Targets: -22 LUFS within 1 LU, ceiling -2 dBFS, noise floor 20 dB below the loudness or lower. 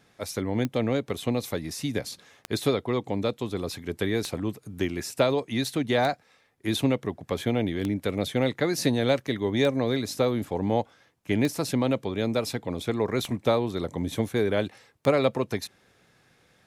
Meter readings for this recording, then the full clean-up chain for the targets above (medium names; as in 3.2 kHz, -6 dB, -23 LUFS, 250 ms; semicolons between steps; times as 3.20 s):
clicks found 9; loudness -27.5 LUFS; peak level -8.5 dBFS; loudness target -22.0 LUFS
-> de-click; trim +5.5 dB